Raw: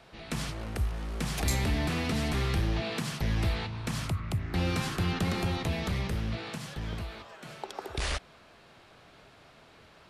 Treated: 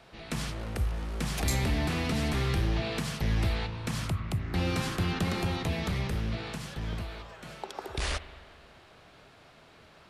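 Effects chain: spring tank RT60 1.9 s, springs 38/54 ms, chirp 30 ms, DRR 13 dB

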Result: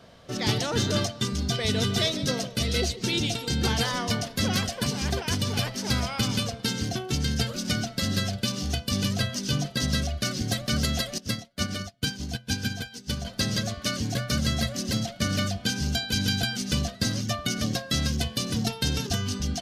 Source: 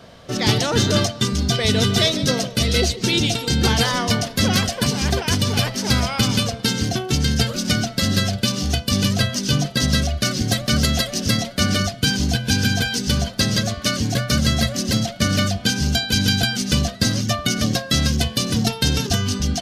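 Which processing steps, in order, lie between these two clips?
11.18–13.25 s: upward expansion 2.5:1, over -32 dBFS; trim -7.5 dB

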